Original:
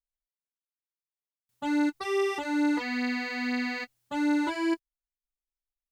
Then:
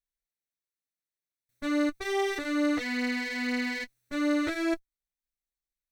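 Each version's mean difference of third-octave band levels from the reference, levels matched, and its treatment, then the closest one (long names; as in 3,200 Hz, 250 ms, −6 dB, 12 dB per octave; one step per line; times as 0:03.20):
3.5 dB: lower of the sound and its delayed copy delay 0.49 ms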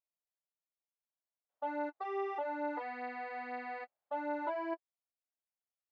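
7.0 dB: four-pole ladder band-pass 730 Hz, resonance 55%
level +6.5 dB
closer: first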